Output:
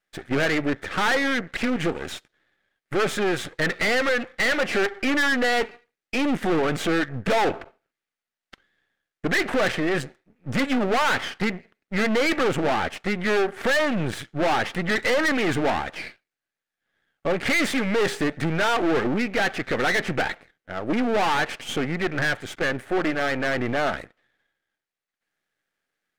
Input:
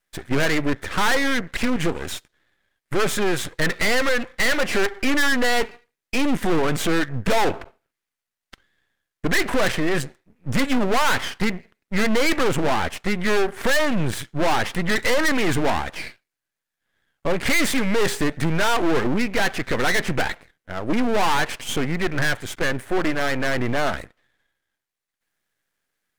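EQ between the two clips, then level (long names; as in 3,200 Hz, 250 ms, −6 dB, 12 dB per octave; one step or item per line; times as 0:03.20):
low-shelf EQ 110 Hz −10 dB
high-shelf EQ 6,300 Hz −11.5 dB
notch filter 1,000 Hz, Q 9.2
0.0 dB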